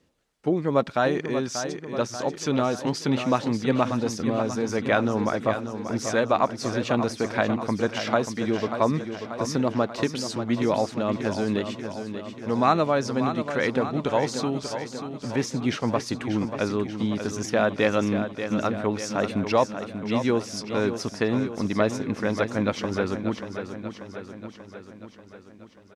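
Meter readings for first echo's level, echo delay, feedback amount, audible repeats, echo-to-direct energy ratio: -9.0 dB, 0.587 s, 60%, 6, -7.0 dB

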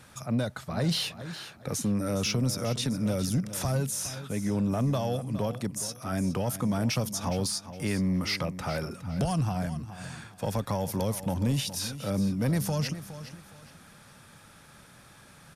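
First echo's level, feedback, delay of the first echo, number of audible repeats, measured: -13.0 dB, 28%, 0.414 s, 2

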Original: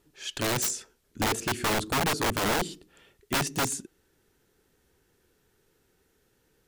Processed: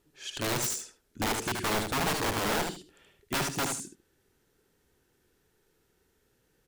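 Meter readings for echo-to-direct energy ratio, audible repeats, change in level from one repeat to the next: -5.0 dB, 2, -14.5 dB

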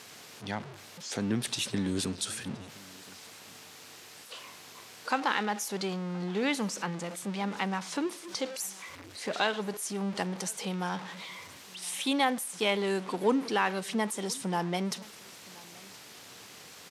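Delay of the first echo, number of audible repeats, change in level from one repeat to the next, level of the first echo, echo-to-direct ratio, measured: 1.02 s, 1, no steady repeat, -24.0 dB, -24.0 dB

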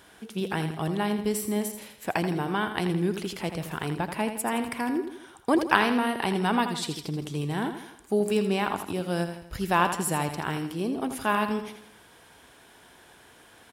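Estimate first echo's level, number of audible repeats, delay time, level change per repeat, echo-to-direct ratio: -9.0 dB, 4, 82 ms, -6.5 dB, -8.0 dB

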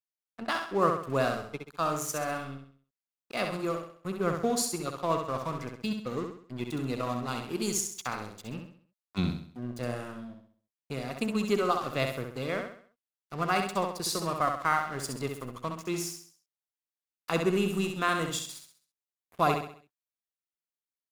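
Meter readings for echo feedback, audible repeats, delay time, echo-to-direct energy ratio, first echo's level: 41%, 4, 66 ms, -4.5 dB, -5.5 dB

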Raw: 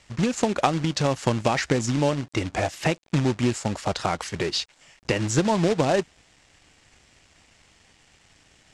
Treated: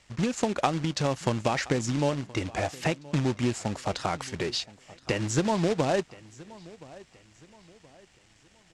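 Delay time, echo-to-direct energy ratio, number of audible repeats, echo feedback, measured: 1.023 s, -20.5 dB, 2, 37%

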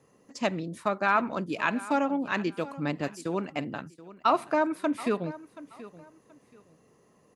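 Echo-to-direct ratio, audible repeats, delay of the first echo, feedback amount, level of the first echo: -17.0 dB, 2, 0.728 s, 26%, -17.5 dB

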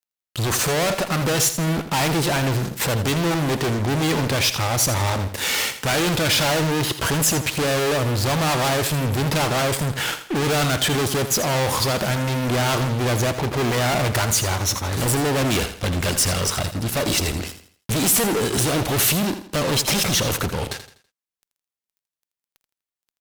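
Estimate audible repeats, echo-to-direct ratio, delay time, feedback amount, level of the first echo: 3, -10.5 dB, 82 ms, 36%, -11.0 dB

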